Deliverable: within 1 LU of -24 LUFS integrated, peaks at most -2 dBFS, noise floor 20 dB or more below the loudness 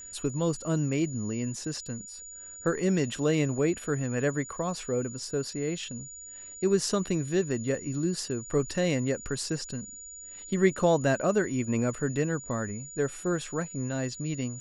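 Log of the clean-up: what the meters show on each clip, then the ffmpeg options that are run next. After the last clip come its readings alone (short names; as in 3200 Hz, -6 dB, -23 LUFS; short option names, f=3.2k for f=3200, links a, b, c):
steady tone 6900 Hz; tone level -42 dBFS; loudness -29.5 LUFS; peak -11.0 dBFS; loudness target -24.0 LUFS
-> -af "bandreject=f=6.9k:w=30"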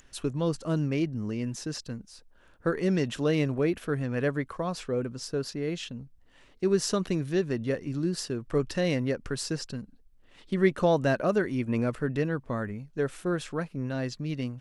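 steady tone none; loudness -29.5 LUFS; peak -10.5 dBFS; loudness target -24.0 LUFS
-> -af "volume=5.5dB"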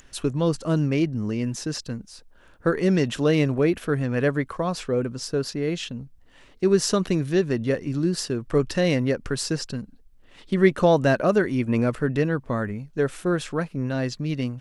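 loudness -24.0 LUFS; peak -5.0 dBFS; noise floor -53 dBFS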